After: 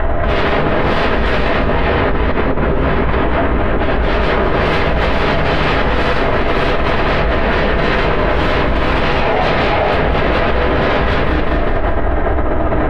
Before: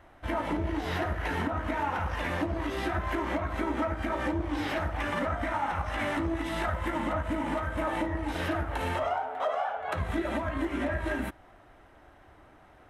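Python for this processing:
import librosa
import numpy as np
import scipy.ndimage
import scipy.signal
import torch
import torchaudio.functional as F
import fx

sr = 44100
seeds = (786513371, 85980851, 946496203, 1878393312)

y = fx.graphic_eq(x, sr, hz=(125, 500, 2000, 4000, 8000), db=(8, -11, -5, -9, -10), at=(1.59, 3.89))
y = fx.fold_sine(y, sr, drive_db=17, ceiling_db=-19.0)
y = fx.air_absorb(y, sr, metres=430.0)
y = fx.echo_feedback(y, sr, ms=200, feedback_pct=43, wet_db=-7.0)
y = fx.room_shoebox(y, sr, seeds[0], volume_m3=38.0, walls='mixed', distance_m=1.4)
y = fx.env_flatten(y, sr, amount_pct=100)
y = y * 10.0 ** (-10.5 / 20.0)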